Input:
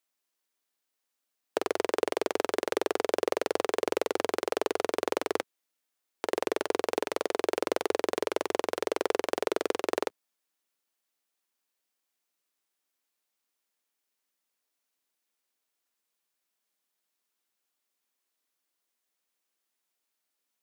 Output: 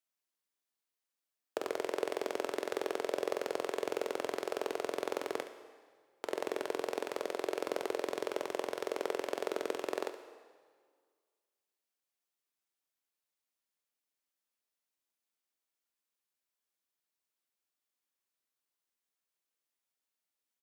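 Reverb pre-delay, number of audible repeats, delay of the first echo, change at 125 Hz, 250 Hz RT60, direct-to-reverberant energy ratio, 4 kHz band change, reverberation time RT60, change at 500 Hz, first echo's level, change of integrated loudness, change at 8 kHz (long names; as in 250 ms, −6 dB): 7 ms, 1, 70 ms, can't be measured, 1.7 s, 7.5 dB, −7.5 dB, 1.8 s, −6.5 dB, −12.5 dB, −7.0 dB, −7.5 dB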